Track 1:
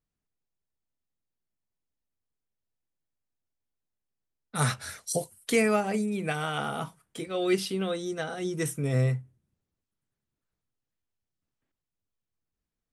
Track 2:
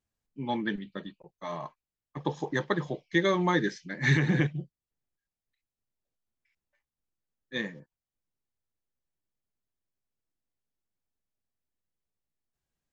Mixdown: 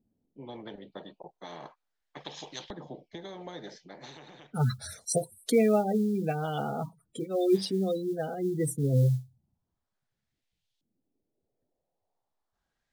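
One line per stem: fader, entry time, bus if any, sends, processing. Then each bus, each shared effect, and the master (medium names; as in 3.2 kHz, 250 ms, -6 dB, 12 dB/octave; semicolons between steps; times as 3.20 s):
+2.0 dB, 0.00 s, no send, spectral gate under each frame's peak -15 dB strong; modulation noise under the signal 30 dB
+2.5 dB, 0.00 s, no send, compression 3:1, threshold -27 dBFS, peak gain reduction 7 dB; LFO band-pass saw up 0.37 Hz 220–3300 Hz; spectrum-flattening compressor 4:1; auto duck -11 dB, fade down 0.85 s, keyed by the first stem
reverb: none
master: high-order bell 1.7 kHz -9.5 dB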